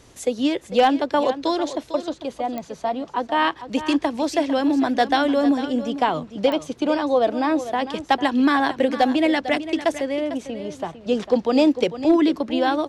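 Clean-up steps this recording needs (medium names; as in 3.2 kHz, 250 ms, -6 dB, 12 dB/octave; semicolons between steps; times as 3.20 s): clip repair -9 dBFS; de-click; inverse comb 450 ms -12.5 dB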